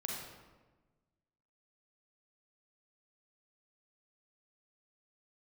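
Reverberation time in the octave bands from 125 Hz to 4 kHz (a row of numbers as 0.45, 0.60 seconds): 1.7, 1.6, 1.3, 1.2, 1.0, 0.80 seconds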